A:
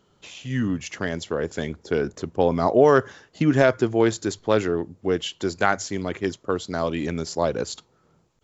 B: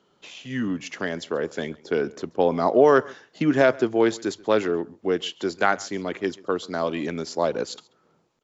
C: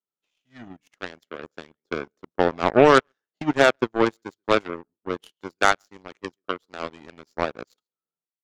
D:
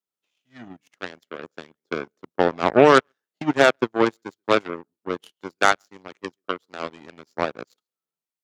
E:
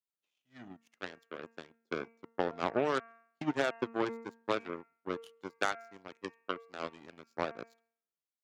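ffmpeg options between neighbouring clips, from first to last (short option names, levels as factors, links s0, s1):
-filter_complex "[0:a]acrossover=split=170 6700:gain=0.158 1 0.224[s0][s1][s2];[s0][s1][s2]amix=inputs=3:normalize=0,aecho=1:1:135:0.0668"
-af "equalizer=f=1300:t=o:w=0.25:g=5,aeval=exprs='0.668*(cos(1*acos(clip(val(0)/0.668,-1,1)))-cos(1*PI/2))+0.00422*(cos(4*acos(clip(val(0)/0.668,-1,1)))-cos(4*PI/2))+0.0944*(cos(7*acos(clip(val(0)/0.668,-1,1)))-cos(7*PI/2))':c=same,volume=1.19"
-af "highpass=100,volume=1.12"
-af "bandreject=f=229.3:t=h:w=4,bandreject=f=458.6:t=h:w=4,bandreject=f=687.9:t=h:w=4,bandreject=f=917.2:t=h:w=4,bandreject=f=1146.5:t=h:w=4,bandreject=f=1375.8:t=h:w=4,bandreject=f=1605.1:t=h:w=4,bandreject=f=1834.4:t=h:w=4,bandreject=f=2063.7:t=h:w=4,bandreject=f=2293:t=h:w=4,bandreject=f=2522.3:t=h:w=4,bandreject=f=2751.6:t=h:w=4,acompressor=threshold=0.126:ratio=6,volume=0.376"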